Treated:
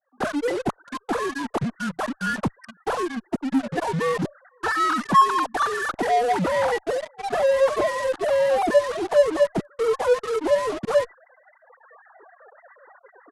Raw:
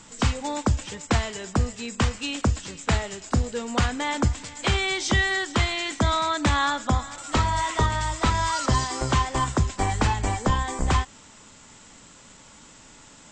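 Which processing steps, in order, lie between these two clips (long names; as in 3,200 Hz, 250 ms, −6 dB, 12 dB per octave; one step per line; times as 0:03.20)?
three sine waves on the formant tracks
reverb reduction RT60 1.6 s
in parallel at −11.5 dB: fuzz pedal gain 47 dB, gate −39 dBFS
on the sum: pitch shifter −10 semitones
reversed playback
upward compression, threshold −36 dBFS
reversed playback
downward expander −48 dBFS
level −1.5 dB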